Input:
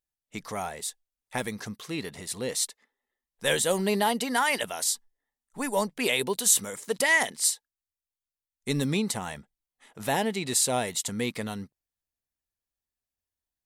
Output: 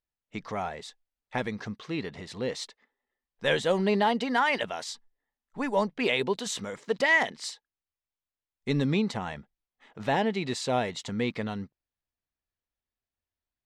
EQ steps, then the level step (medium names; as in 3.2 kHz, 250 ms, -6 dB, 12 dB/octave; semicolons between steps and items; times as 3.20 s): distance through air 180 m; +1.5 dB